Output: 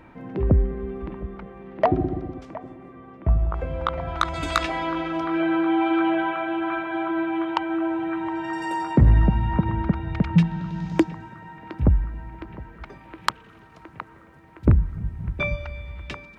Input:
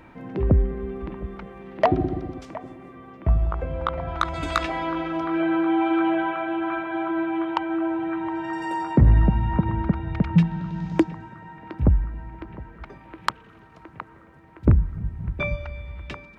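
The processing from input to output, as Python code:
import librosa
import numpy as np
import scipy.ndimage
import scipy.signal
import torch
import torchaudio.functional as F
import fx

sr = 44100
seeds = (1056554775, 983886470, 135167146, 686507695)

y = fx.high_shelf(x, sr, hz=2800.0, db=fx.steps((0.0, -4.0), (1.22, -9.5), (3.53, 5.0)))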